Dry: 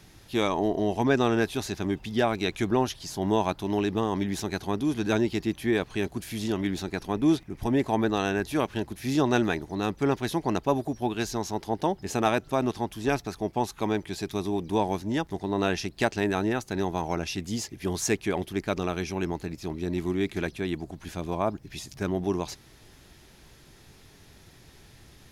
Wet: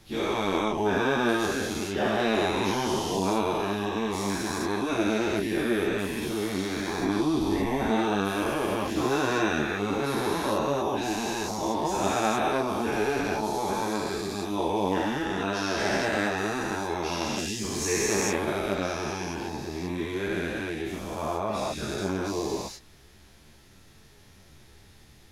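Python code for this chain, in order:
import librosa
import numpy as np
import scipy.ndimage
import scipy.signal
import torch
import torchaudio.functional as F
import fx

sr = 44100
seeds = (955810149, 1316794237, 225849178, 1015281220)

y = fx.spec_dilate(x, sr, span_ms=480)
y = fx.ensemble(y, sr)
y = y * librosa.db_to_amplitude(-4.5)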